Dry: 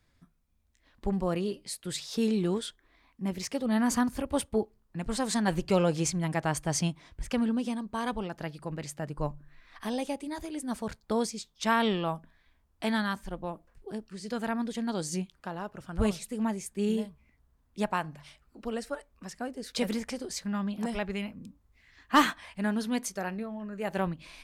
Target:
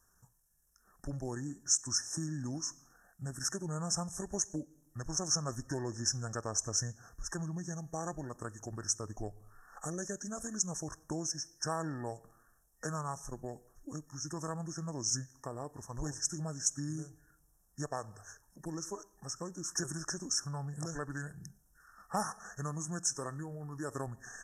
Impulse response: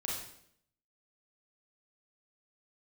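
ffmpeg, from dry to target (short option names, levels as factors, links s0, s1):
-filter_complex "[0:a]equalizer=f=440:t=o:w=0.36:g=2.5,asplit=2[s0][s1];[1:a]atrim=start_sample=2205[s2];[s1][s2]afir=irnorm=-1:irlink=0,volume=0.075[s3];[s0][s3]amix=inputs=2:normalize=0,afftfilt=real='re*(1-between(b*sr/4096,2600,7400))':imag='im*(1-between(b*sr/4096,2600,7400))':win_size=4096:overlap=0.75,acompressor=threshold=0.02:ratio=2.5,crystalizer=i=6:c=0,asetrate=31183,aresample=44100,atempo=1.41421,highshelf=f=12000:g=-3,volume=0.562"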